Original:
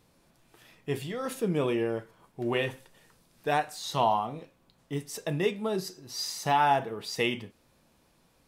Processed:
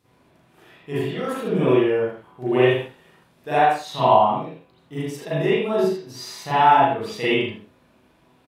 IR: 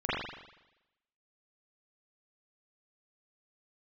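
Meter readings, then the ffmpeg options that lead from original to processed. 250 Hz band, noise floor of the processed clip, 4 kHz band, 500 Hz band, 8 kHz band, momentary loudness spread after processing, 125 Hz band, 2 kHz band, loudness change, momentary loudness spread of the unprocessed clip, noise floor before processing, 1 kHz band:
+9.5 dB, -59 dBFS, +4.5 dB, +10.5 dB, -2.5 dB, 15 LU, +7.5 dB, +7.5 dB, +9.5 dB, 12 LU, -66 dBFS, +10.0 dB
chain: -filter_complex "[0:a]highpass=63,aecho=1:1:37|80:0.501|0.398[a];[1:a]atrim=start_sample=2205,atrim=end_sample=6615[b];[a][b]afir=irnorm=-1:irlink=0,volume=-3dB"

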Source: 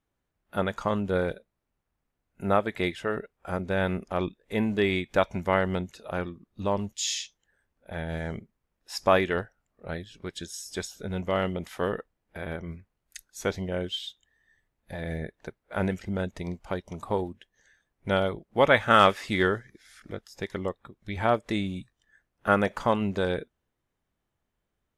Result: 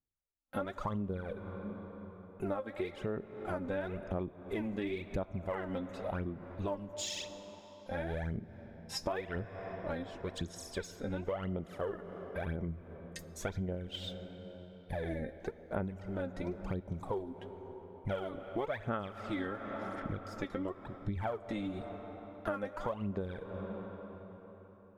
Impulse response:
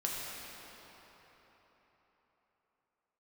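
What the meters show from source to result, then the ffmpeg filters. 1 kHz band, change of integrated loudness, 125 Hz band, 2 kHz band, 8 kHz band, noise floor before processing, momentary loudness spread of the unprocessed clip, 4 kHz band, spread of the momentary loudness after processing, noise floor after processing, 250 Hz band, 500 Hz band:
-13.5 dB, -11.5 dB, -6.5 dB, -14.5 dB, -9.5 dB, -81 dBFS, 16 LU, -11.5 dB, 10 LU, -55 dBFS, -8.0 dB, -10.0 dB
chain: -filter_complex "[0:a]tiltshelf=f=1.3k:g=4,agate=range=-23dB:threshold=-55dB:ratio=16:detection=peak,aphaser=in_gain=1:out_gain=1:delay=3.8:decay=0.74:speed=0.95:type=sinusoidal,asplit=2[a][b];[1:a]atrim=start_sample=2205[c];[b][c]afir=irnorm=-1:irlink=0,volume=-17.5dB[d];[a][d]amix=inputs=2:normalize=0,acompressor=threshold=-29dB:ratio=10,adynamicequalizer=threshold=0.00158:dfrequency=4400:dqfactor=0.7:tfrequency=4400:tqfactor=0.7:attack=5:release=100:ratio=0.375:range=2.5:mode=cutabove:tftype=highshelf,volume=-4.5dB"

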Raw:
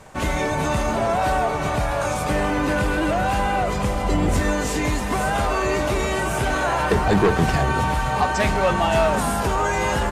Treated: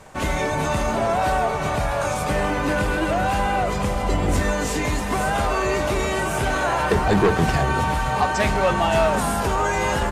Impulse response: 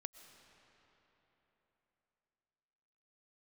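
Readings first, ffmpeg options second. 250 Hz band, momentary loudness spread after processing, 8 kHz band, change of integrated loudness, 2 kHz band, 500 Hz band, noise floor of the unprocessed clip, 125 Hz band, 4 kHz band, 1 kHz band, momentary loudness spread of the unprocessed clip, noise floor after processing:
-1.0 dB, 5 LU, 0.0 dB, 0.0 dB, 0.0 dB, 0.0 dB, -25 dBFS, -0.5 dB, 0.0 dB, 0.0 dB, 4 LU, -25 dBFS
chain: -af "bandreject=f=60:t=h:w=6,bandreject=f=120:t=h:w=6,bandreject=f=180:t=h:w=6,bandreject=f=240:t=h:w=6,bandreject=f=300:t=h:w=6"

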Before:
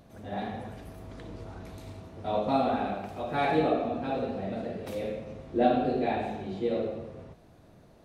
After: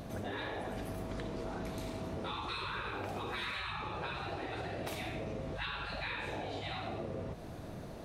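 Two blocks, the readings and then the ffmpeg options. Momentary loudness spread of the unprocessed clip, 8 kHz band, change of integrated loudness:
18 LU, n/a, -9.5 dB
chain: -af "afftfilt=real='re*lt(hypot(re,im),0.0562)':imag='im*lt(hypot(re,im),0.0562)':win_size=1024:overlap=0.75,acompressor=threshold=-47dB:ratio=6,volume=10.5dB"

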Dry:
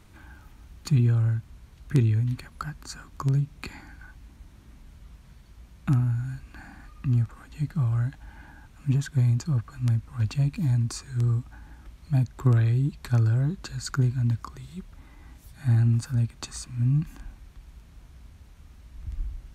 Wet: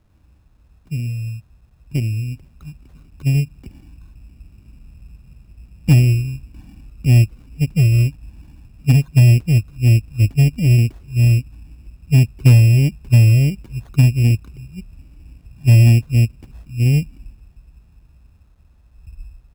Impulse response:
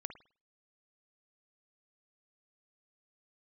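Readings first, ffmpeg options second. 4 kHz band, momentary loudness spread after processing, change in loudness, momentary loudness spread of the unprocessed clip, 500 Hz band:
+9.5 dB, 16 LU, +10.5 dB, 18 LU, +9.0 dB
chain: -af "firequalizer=gain_entry='entry(120,0);entry(990,-24);entry(5600,-27)':delay=0.05:min_phase=1,dynaudnorm=f=420:g=13:m=13.5dB,acrusher=samples=17:mix=1:aa=0.000001,aeval=exprs='0.794*(cos(1*acos(clip(val(0)/0.794,-1,1)))-cos(1*PI/2))+0.0112*(cos(2*acos(clip(val(0)/0.794,-1,1)))-cos(2*PI/2))+0.0447*(cos(7*acos(clip(val(0)/0.794,-1,1)))-cos(7*PI/2))':c=same,acrusher=bits=10:mix=0:aa=0.000001"

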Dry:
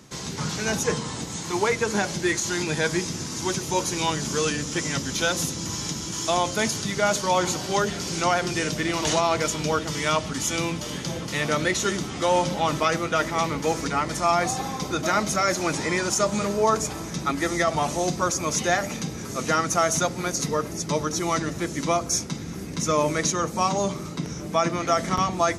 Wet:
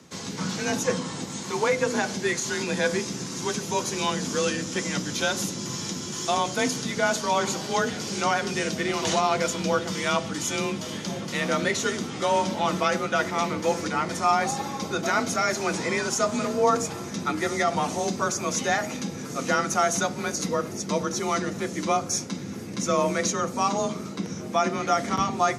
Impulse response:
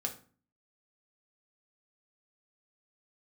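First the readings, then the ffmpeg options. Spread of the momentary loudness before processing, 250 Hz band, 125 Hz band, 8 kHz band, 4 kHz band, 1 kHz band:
7 LU, -1.0 dB, -3.5 dB, -2.5 dB, -2.0 dB, -1.0 dB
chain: -filter_complex "[0:a]afreqshift=32,asplit=2[a][b];[1:a]atrim=start_sample=2205,lowpass=8.4k[c];[b][c]afir=irnorm=-1:irlink=0,volume=-8.5dB[d];[a][d]amix=inputs=2:normalize=0,volume=-4dB"

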